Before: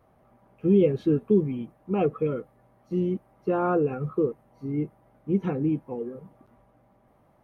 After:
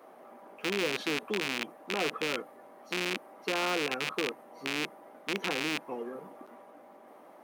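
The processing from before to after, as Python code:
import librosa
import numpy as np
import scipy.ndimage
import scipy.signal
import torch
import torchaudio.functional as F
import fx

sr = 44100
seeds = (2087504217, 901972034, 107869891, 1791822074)

y = fx.rattle_buzz(x, sr, strikes_db=-35.0, level_db=-22.0)
y = scipy.signal.sosfilt(scipy.signal.butter(4, 280.0, 'highpass', fs=sr, output='sos'), y)
y = fx.spectral_comp(y, sr, ratio=2.0)
y = y * librosa.db_to_amplitude(-4.5)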